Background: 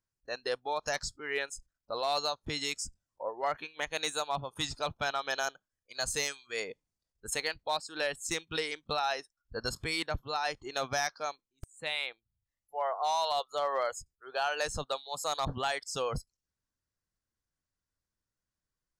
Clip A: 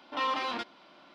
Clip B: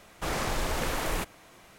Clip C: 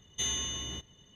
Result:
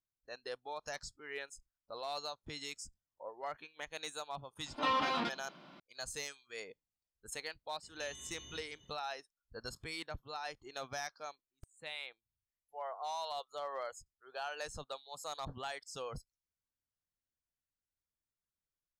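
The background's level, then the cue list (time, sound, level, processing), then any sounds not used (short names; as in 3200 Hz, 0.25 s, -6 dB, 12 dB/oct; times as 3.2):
background -10 dB
4.66 add A -2 dB + bell 160 Hz +14.5 dB
7.82 add C -6 dB, fades 0.02 s + compressor 10:1, threshold -42 dBFS
not used: B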